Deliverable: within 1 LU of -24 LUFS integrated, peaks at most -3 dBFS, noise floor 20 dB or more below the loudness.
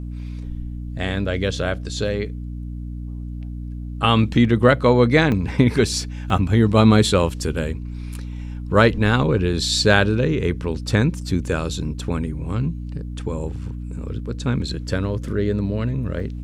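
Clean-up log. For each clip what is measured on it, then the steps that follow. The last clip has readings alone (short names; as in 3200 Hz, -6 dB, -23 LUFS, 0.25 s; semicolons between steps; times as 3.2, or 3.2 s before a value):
dropouts 3; longest dropout 2.1 ms; hum 60 Hz; harmonics up to 300 Hz; hum level -28 dBFS; loudness -20.0 LUFS; peak -1.5 dBFS; loudness target -24.0 LUFS
-> interpolate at 5.32/6.3/16.2, 2.1 ms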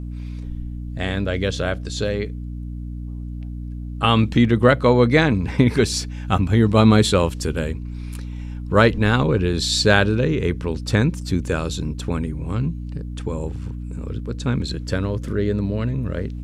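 dropouts 0; hum 60 Hz; harmonics up to 300 Hz; hum level -28 dBFS
-> notches 60/120/180/240/300 Hz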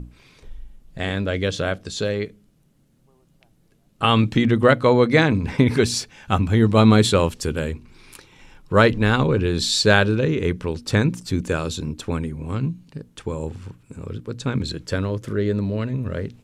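hum none; loudness -20.5 LUFS; peak -1.5 dBFS; loudness target -24.0 LUFS
-> gain -3.5 dB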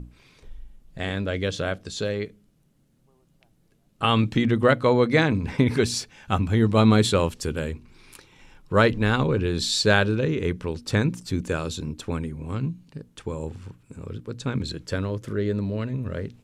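loudness -24.0 LUFS; peak -5.0 dBFS; noise floor -63 dBFS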